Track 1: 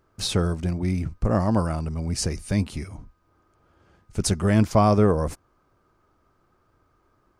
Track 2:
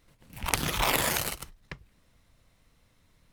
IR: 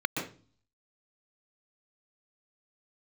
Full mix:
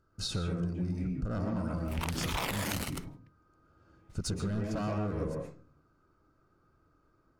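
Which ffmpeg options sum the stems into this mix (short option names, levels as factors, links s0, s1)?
-filter_complex "[0:a]asoftclip=type=hard:threshold=0.119,volume=0.473,asplit=3[s0][s1][s2];[s1]volume=0.355[s3];[1:a]alimiter=limit=0.299:level=0:latency=1:release=211,adelay=1550,volume=1.19[s4];[s2]apad=whole_len=215122[s5];[s4][s5]sidechaingate=range=0.0224:threshold=0.00126:ratio=16:detection=peak[s6];[2:a]atrim=start_sample=2205[s7];[s3][s7]afir=irnorm=-1:irlink=0[s8];[s0][s6][s8]amix=inputs=3:normalize=0,highshelf=f=10000:g=-6.5,acompressor=threshold=0.0316:ratio=6"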